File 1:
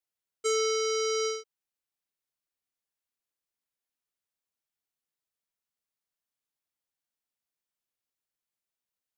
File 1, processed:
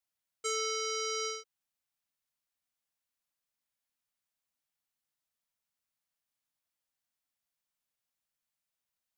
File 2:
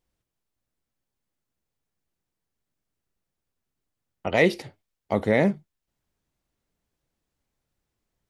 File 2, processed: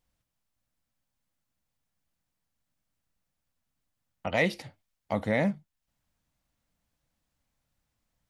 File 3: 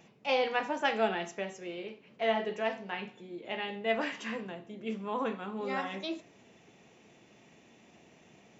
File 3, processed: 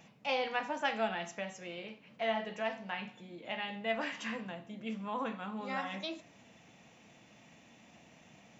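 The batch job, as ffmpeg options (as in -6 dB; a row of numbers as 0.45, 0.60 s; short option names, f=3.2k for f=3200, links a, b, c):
-filter_complex "[0:a]asplit=2[a][b];[b]acompressor=threshold=-38dB:ratio=6,volume=0.5dB[c];[a][c]amix=inputs=2:normalize=0,equalizer=f=390:t=o:w=0.36:g=-14,volume=-5dB"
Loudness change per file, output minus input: -5.5, -5.5, -3.5 LU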